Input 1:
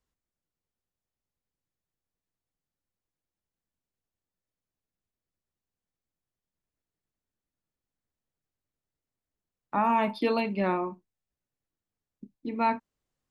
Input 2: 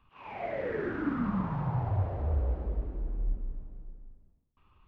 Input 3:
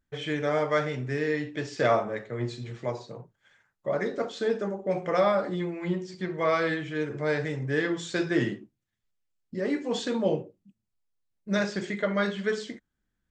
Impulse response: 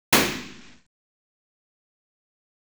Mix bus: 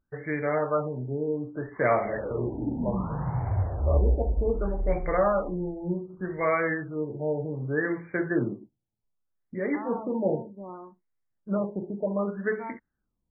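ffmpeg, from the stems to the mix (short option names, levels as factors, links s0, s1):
-filter_complex "[0:a]volume=0.211[s0];[1:a]equalizer=f=62:t=o:w=0.83:g=7.5,adelay=1600,volume=1.06[s1];[2:a]volume=0.944[s2];[s0][s1][s2]amix=inputs=3:normalize=0,equalizer=f=2100:w=1.5:g=3,afftfilt=real='re*lt(b*sr/1024,910*pow(2400/910,0.5+0.5*sin(2*PI*0.65*pts/sr)))':imag='im*lt(b*sr/1024,910*pow(2400/910,0.5+0.5*sin(2*PI*0.65*pts/sr)))':win_size=1024:overlap=0.75"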